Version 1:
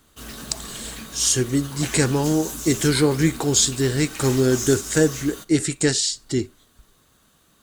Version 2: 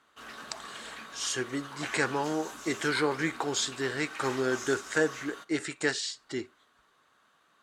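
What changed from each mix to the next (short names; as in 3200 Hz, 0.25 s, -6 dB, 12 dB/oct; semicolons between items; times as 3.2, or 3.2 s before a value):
master: add band-pass 1300 Hz, Q 0.97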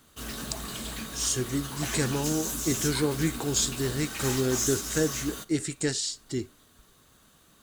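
speech -8.5 dB; master: remove band-pass 1300 Hz, Q 0.97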